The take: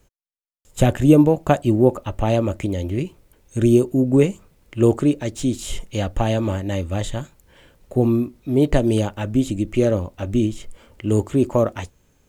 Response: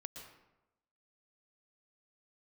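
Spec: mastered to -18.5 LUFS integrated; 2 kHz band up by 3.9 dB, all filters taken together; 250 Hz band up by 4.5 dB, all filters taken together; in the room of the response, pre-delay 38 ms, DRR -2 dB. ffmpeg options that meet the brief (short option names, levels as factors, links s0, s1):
-filter_complex "[0:a]equalizer=f=250:t=o:g=5.5,equalizer=f=2000:t=o:g=5,asplit=2[s0][s1];[1:a]atrim=start_sample=2205,adelay=38[s2];[s1][s2]afir=irnorm=-1:irlink=0,volume=2[s3];[s0][s3]amix=inputs=2:normalize=0,volume=0.501"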